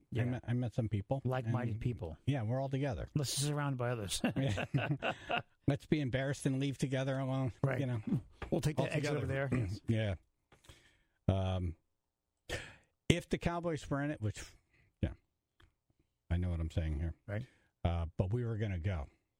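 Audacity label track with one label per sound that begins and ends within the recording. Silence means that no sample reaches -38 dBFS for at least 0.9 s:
11.280000	15.120000	sound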